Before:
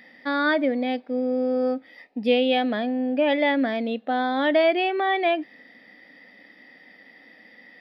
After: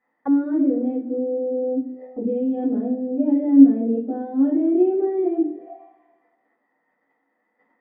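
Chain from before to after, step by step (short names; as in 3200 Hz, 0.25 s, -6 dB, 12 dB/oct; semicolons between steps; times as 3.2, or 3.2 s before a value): gate -46 dBFS, range -22 dB; low shelf 280 Hz -5 dB; limiter -19 dBFS, peak gain reduction 9.5 dB; two-slope reverb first 0.4 s, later 1.5 s, from -18 dB, DRR -9.5 dB; envelope low-pass 320–1100 Hz down, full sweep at -20.5 dBFS; gain -5.5 dB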